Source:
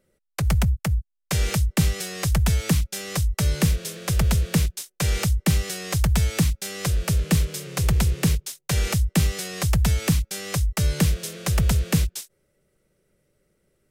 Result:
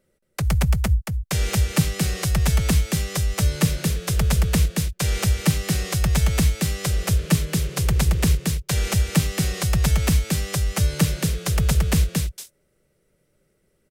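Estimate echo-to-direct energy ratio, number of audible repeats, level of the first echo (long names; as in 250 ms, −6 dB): −3.5 dB, 1, −3.5 dB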